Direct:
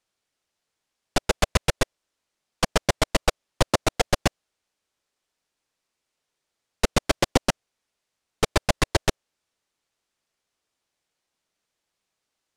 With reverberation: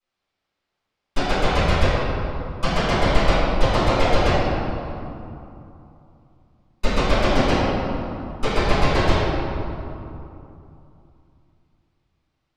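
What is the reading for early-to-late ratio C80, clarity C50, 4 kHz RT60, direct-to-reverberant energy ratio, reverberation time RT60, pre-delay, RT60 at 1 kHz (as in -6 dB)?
-2.5 dB, -4.5 dB, 1.6 s, -20.0 dB, 2.9 s, 3 ms, 2.9 s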